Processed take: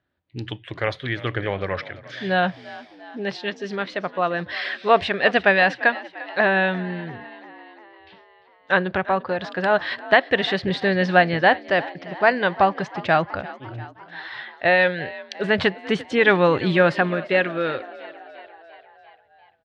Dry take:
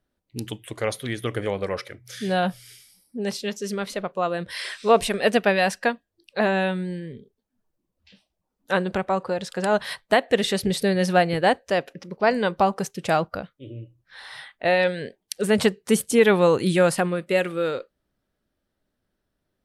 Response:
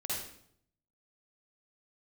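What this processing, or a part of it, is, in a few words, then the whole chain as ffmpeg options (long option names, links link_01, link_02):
frequency-shifting delay pedal into a guitar cabinet: -filter_complex "[0:a]asplit=7[link_01][link_02][link_03][link_04][link_05][link_06][link_07];[link_02]adelay=346,afreqshift=53,volume=-18.5dB[link_08];[link_03]adelay=692,afreqshift=106,volume=-22.7dB[link_09];[link_04]adelay=1038,afreqshift=159,volume=-26.8dB[link_10];[link_05]adelay=1384,afreqshift=212,volume=-31dB[link_11];[link_06]adelay=1730,afreqshift=265,volume=-35.1dB[link_12];[link_07]adelay=2076,afreqshift=318,volume=-39.3dB[link_13];[link_01][link_08][link_09][link_10][link_11][link_12][link_13]amix=inputs=7:normalize=0,highpass=80,equalizer=frequency=89:width_type=q:width=4:gain=6,equalizer=frequency=220:width_type=q:width=4:gain=-8,equalizer=frequency=460:width_type=q:width=4:gain=-6,equalizer=frequency=1700:width_type=q:width=4:gain=6,lowpass=frequency=4000:width=0.5412,lowpass=frequency=4000:width=1.3066,volume=3dB"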